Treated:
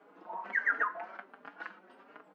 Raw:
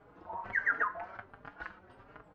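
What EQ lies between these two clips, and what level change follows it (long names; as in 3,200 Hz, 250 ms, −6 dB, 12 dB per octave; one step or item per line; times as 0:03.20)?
Butterworth high-pass 190 Hz 48 dB per octave
parametric band 2,700 Hz +2.5 dB 0.77 octaves
0.0 dB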